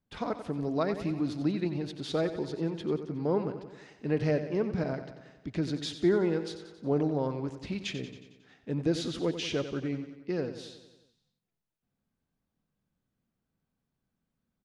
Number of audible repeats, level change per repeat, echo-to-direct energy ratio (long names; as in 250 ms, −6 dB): 6, −4.5 dB, −9.0 dB